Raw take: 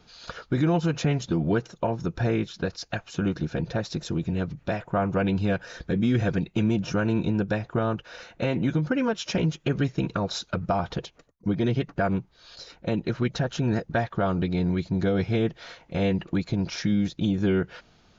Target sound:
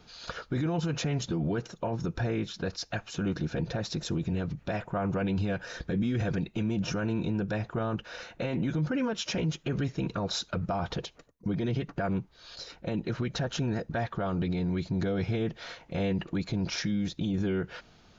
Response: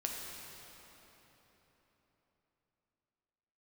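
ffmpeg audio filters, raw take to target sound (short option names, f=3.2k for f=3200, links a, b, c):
-filter_complex "[0:a]alimiter=limit=-23dB:level=0:latency=1:release=20,asplit=2[a][b];[1:a]atrim=start_sample=2205,atrim=end_sample=3528[c];[b][c]afir=irnorm=-1:irlink=0,volume=-20.5dB[d];[a][d]amix=inputs=2:normalize=0"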